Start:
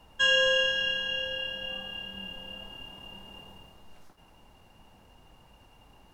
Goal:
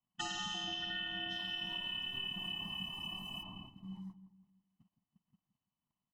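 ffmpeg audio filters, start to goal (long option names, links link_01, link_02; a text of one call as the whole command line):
ffmpeg -i in.wav -filter_complex "[0:a]asplit=3[link_01][link_02][link_03];[link_01]afade=type=out:start_time=1.29:duration=0.02[link_04];[link_02]bass=frequency=250:gain=-1,treble=frequency=4000:gain=15,afade=type=in:start_time=1.29:duration=0.02,afade=type=out:start_time=3.42:duration=0.02[link_05];[link_03]afade=type=in:start_time=3.42:duration=0.02[link_06];[link_04][link_05][link_06]amix=inputs=3:normalize=0,afftfilt=real='re*lt(hypot(re,im),0.251)':imag='im*lt(hypot(re,im),0.251)':win_size=1024:overlap=0.75,equalizer=frequency=270:width_type=o:width=0.73:gain=-12.5,aeval=exprs='val(0)*sin(2*PI*190*n/s)':channel_layout=same,agate=range=-22dB:threshold=-55dB:ratio=16:detection=peak,aecho=1:1:1:0.59,acompressor=threshold=-39dB:ratio=6,afftdn=noise_reduction=17:noise_floor=-54,asplit=2[link_07][link_08];[link_08]adelay=166,lowpass=frequency=1100:poles=1,volume=-12.5dB,asplit=2[link_09][link_10];[link_10]adelay=166,lowpass=frequency=1100:poles=1,volume=0.44,asplit=2[link_11][link_12];[link_12]adelay=166,lowpass=frequency=1100:poles=1,volume=0.44,asplit=2[link_13][link_14];[link_14]adelay=166,lowpass=frequency=1100:poles=1,volume=0.44[link_15];[link_07][link_09][link_11][link_13][link_15]amix=inputs=5:normalize=0,volume=2.5dB" out.wav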